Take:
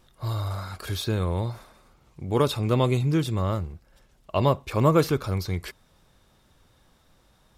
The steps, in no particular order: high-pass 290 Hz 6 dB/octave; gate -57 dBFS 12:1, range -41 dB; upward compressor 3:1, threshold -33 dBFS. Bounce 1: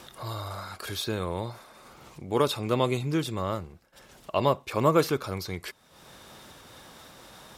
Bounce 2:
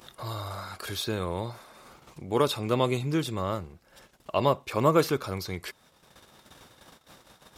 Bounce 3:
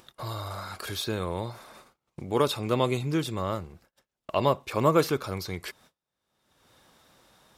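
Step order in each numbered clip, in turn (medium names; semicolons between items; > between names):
upward compressor > high-pass > gate; gate > upward compressor > high-pass; high-pass > gate > upward compressor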